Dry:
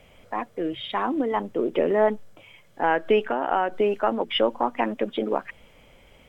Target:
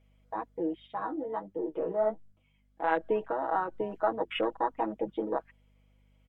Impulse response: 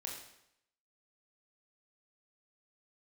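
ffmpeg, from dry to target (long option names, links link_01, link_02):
-filter_complex "[0:a]afwtdn=0.0447,lowshelf=frequency=130:gain=-9,aecho=1:1:6.2:0.82,aeval=exprs='val(0)+0.00158*(sin(2*PI*50*n/s)+sin(2*PI*2*50*n/s)/2+sin(2*PI*3*50*n/s)/3+sin(2*PI*4*50*n/s)/4+sin(2*PI*5*50*n/s)/5)':channel_layout=same,asplit=3[link_01][link_02][link_03];[link_01]afade=type=out:start_time=0.86:duration=0.02[link_04];[link_02]flanger=delay=9.6:depth=7.5:regen=34:speed=1.3:shape=triangular,afade=type=in:start_time=0.86:duration=0.02,afade=type=out:start_time=2.96:duration=0.02[link_05];[link_03]afade=type=in:start_time=2.96:duration=0.02[link_06];[link_04][link_05][link_06]amix=inputs=3:normalize=0,volume=-7dB"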